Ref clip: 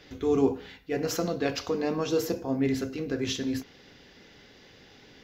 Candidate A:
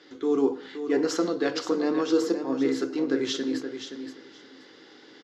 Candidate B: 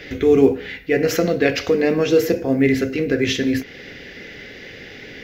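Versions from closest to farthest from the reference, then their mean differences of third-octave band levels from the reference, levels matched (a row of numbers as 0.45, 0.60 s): B, A; 3.0, 5.0 dB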